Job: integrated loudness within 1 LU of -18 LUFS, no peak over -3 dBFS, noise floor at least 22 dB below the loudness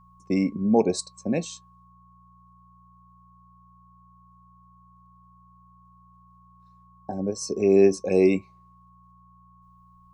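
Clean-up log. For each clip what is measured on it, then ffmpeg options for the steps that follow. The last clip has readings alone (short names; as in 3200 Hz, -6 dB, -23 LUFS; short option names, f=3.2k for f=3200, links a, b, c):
hum 60 Hz; harmonics up to 180 Hz; hum level -56 dBFS; steady tone 1100 Hz; tone level -55 dBFS; loudness -23.5 LUFS; peak -6.5 dBFS; loudness target -18.0 LUFS
-> -af "bandreject=f=60:t=h:w=4,bandreject=f=120:t=h:w=4,bandreject=f=180:t=h:w=4"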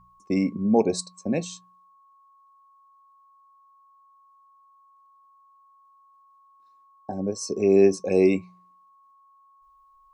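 hum none; steady tone 1100 Hz; tone level -55 dBFS
-> -af "bandreject=f=1.1k:w=30"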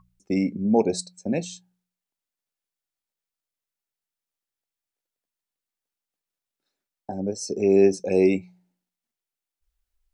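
steady tone none; loudness -23.5 LUFS; peak -6.5 dBFS; loudness target -18.0 LUFS
-> -af "volume=5.5dB,alimiter=limit=-3dB:level=0:latency=1"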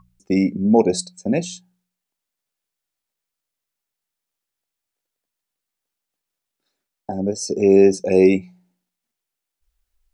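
loudness -18.0 LUFS; peak -3.0 dBFS; noise floor -84 dBFS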